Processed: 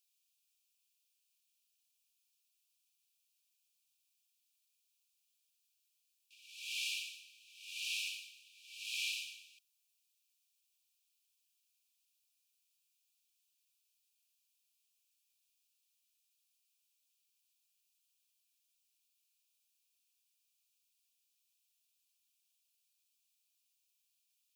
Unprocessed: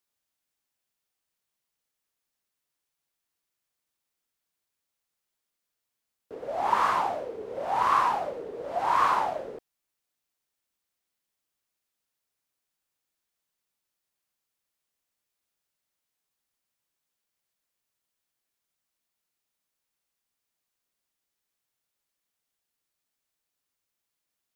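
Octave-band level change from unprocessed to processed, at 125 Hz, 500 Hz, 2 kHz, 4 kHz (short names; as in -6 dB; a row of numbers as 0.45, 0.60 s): under -40 dB, under -40 dB, -8.0 dB, +4.0 dB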